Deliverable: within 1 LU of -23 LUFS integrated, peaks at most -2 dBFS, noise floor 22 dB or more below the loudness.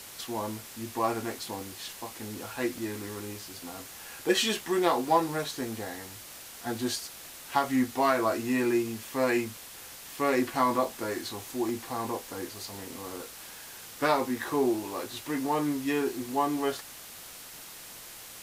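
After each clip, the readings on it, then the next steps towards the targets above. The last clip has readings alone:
dropouts 2; longest dropout 1.5 ms; noise floor -46 dBFS; noise floor target -53 dBFS; loudness -30.5 LUFS; peak level -10.0 dBFS; loudness target -23.0 LUFS
-> interpolate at 2.78/11.69 s, 1.5 ms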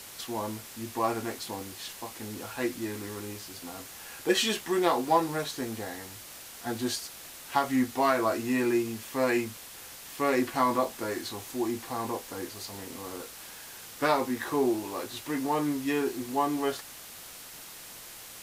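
dropouts 0; noise floor -46 dBFS; noise floor target -53 dBFS
-> noise print and reduce 7 dB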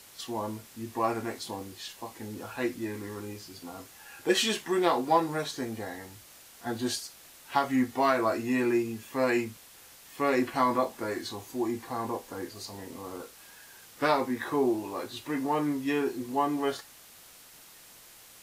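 noise floor -53 dBFS; loudness -30.5 LUFS; peak level -10.0 dBFS; loudness target -23.0 LUFS
-> trim +7.5 dB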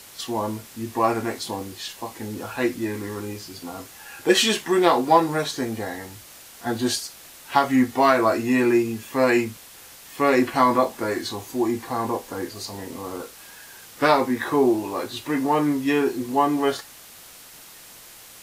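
loudness -23.0 LUFS; peak level -2.5 dBFS; noise floor -45 dBFS

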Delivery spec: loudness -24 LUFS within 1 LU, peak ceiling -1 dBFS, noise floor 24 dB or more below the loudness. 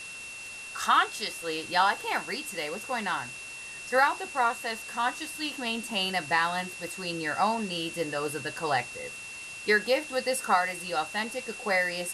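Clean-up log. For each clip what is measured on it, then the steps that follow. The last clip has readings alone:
steady tone 2.7 kHz; tone level -40 dBFS; noise floor -42 dBFS; noise floor target -53 dBFS; loudness -29.0 LUFS; peak level -10.0 dBFS; loudness target -24.0 LUFS
-> band-stop 2.7 kHz, Q 30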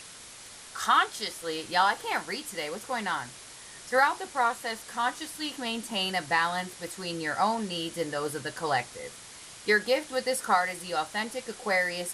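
steady tone not found; noise floor -47 dBFS; noise floor target -53 dBFS
-> noise reduction 6 dB, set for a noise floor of -47 dBFS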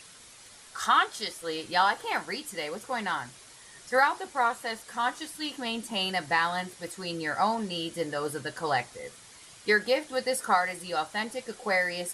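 noise floor -51 dBFS; noise floor target -53 dBFS
-> noise reduction 6 dB, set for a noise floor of -51 dBFS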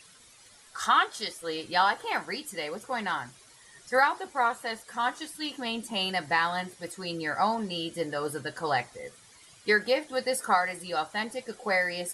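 noise floor -55 dBFS; loudness -29.0 LUFS; peak level -9.5 dBFS; loudness target -24.0 LUFS
-> trim +5 dB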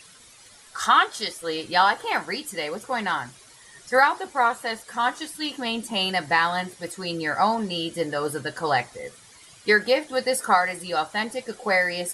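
loudness -24.0 LUFS; peak level -4.5 dBFS; noise floor -50 dBFS

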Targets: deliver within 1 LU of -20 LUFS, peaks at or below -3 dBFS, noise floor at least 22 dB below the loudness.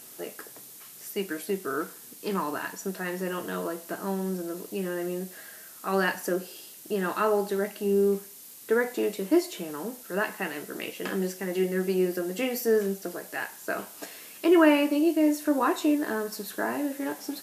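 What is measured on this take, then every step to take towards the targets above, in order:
noise floor -47 dBFS; noise floor target -50 dBFS; loudness -28.0 LUFS; peak level -8.5 dBFS; loudness target -20.0 LUFS
-> noise reduction 6 dB, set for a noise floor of -47 dBFS; trim +8 dB; peak limiter -3 dBFS

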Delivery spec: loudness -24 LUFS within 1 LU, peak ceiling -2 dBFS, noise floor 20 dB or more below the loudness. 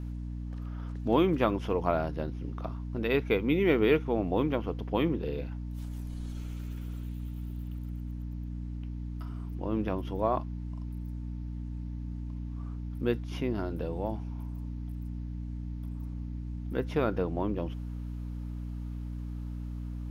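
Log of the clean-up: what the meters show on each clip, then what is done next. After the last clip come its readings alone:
hum 60 Hz; highest harmonic 300 Hz; hum level -34 dBFS; loudness -33.0 LUFS; peak level -10.0 dBFS; loudness target -24.0 LUFS
-> de-hum 60 Hz, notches 5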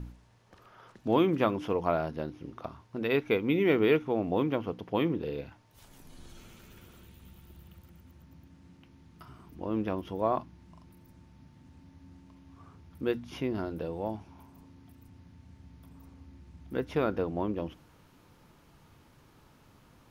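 hum not found; loudness -31.0 LUFS; peak level -10.5 dBFS; loudness target -24.0 LUFS
-> trim +7 dB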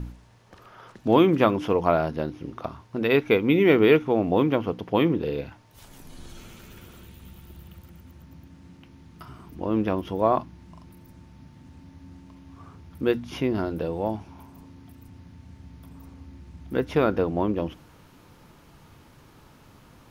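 loudness -24.0 LUFS; peak level -3.5 dBFS; noise floor -53 dBFS

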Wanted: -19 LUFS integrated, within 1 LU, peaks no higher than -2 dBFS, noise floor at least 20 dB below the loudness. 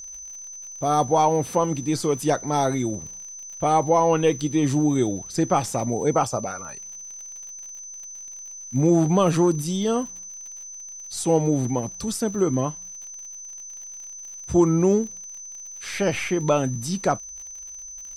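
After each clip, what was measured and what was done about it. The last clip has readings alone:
tick rate 55 per s; steady tone 6.1 kHz; tone level -36 dBFS; loudness -22.5 LUFS; peak level -7.5 dBFS; loudness target -19.0 LUFS
-> de-click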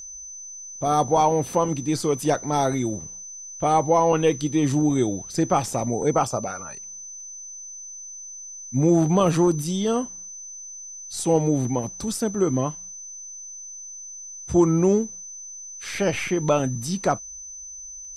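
tick rate 0.11 per s; steady tone 6.1 kHz; tone level -36 dBFS
-> band-stop 6.1 kHz, Q 30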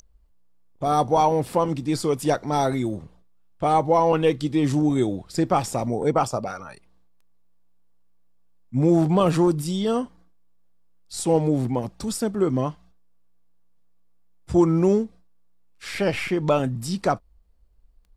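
steady tone not found; loudness -22.5 LUFS; peak level -8.0 dBFS; loudness target -19.0 LUFS
-> trim +3.5 dB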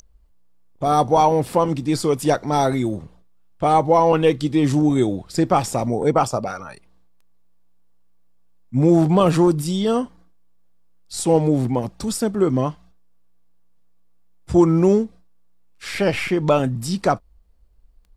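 loudness -19.0 LUFS; peak level -4.5 dBFS; noise floor -52 dBFS

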